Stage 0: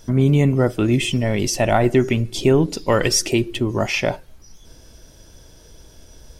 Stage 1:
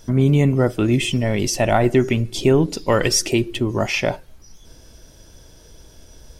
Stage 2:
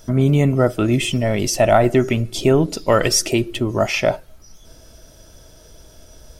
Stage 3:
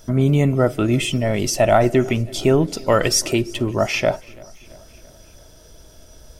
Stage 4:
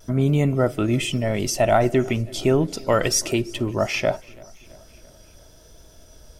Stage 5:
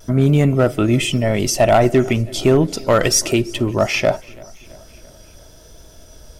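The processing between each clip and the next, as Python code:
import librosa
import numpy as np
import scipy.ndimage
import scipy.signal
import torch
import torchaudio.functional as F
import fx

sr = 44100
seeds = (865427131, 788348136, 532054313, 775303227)

y1 = x
y2 = fx.high_shelf(y1, sr, hz=9600.0, db=5.0)
y2 = fx.small_body(y2, sr, hz=(640.0, 1300.0), ring_ms=30, db=8)
y3 = fx.echo_feedback(y2, sr, ms=335, feedback_pct=58, wet_db=-24.0)
y3 = y3 * librosa.db_to_amplitude(-1.0)
y4 = fx.vibrato(y3, sr, rate_hz=0.73, depth_cents=22.0)
y4 = y4 * librosa.db_to_amplitude(-3.0)
y5 = np.clip(y4, -10.0 ** (-11.5 / 20.0), 10.0 ** (-11.5 / 20.0))
y5 = y5 * librosa.db_to_amplitude(5.5)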